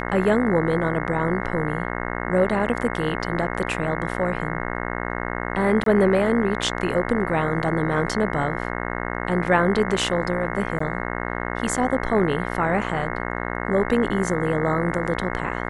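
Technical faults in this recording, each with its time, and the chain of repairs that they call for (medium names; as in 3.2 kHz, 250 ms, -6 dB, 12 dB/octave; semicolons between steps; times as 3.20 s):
buzz 60 Hz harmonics 36 -28 dBFS
5.84–5.86 s: dropout 23 ms
10.79–10.80 s: dropout 14 ms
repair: de-hum 60 Hz, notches 36; interpolate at 5.84 s, 23 ms; interpolate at 10.79 s, 14 ms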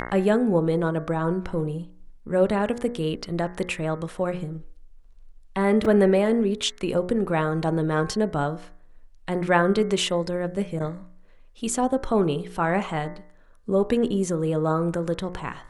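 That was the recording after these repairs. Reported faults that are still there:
nothing left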